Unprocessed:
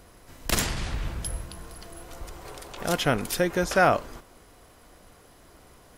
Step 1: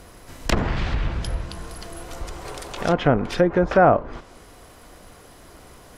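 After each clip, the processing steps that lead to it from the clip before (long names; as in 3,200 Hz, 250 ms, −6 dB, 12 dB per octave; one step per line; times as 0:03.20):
treble cut that deepens with the level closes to 990 Hz, closed at −20.5 dBFS
level +7 dB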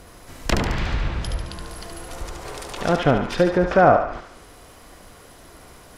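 feedback echo with a high-pass in the loop 72 ms, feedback 58%, high-pass 760 Hz, level −4.5 dB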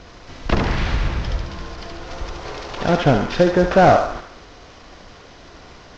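variable-slope delta modulation 32 kbit/s
level +3.5 dB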